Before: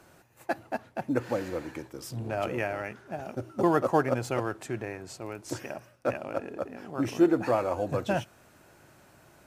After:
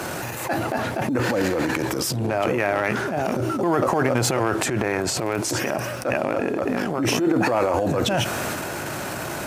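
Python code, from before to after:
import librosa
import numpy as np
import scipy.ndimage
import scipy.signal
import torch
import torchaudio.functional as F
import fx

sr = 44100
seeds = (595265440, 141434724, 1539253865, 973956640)

y = fx.transient(x, sr, attack_db=-9, sustain_db=fx.steps((0.0, 11.0), (5.42, 4.0), (6.66, 11.0)))
y = fx.highpass(y, sr, hz=120.0, slope=6)
y = fx.env_flatten(y, sr, amount_pct=70)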